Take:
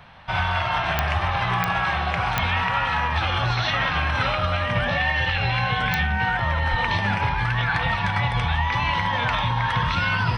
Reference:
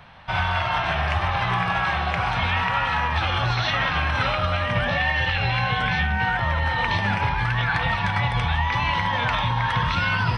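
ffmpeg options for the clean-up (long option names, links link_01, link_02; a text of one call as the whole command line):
ffmpeg -i in.wav -filter_complex "[0:a]adeclick=threshold=4,asplit=3[link_01][link_02][link_03];[link_01]afade=type=out:start_time=6.7:duration=0.02[link_04];[link_02]highpass=frequency=140:width=0.5412,highpass=frequency=140:width=1.3066,afade=type=in:start_time=6.7:duration=0.02,afade=type=out:start_time=6.82:duration=0.02[link_05];[link_03]afade=type=in:start_time=6.82:duration=0.02[link_06];[link_04][link_05][link_06]amix=inputs=3:normalize=0" out.wav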